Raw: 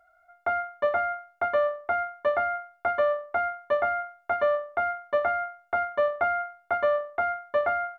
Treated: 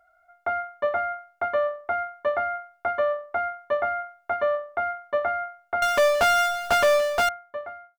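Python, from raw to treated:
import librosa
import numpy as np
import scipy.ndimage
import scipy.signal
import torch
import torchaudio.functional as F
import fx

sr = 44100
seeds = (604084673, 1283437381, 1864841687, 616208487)

y = fx.fade_out_tail(x, sr, length_s=1.14)
y = fx.power_curve(y, sr, exponent=0.35, at=(5.82, 7.29))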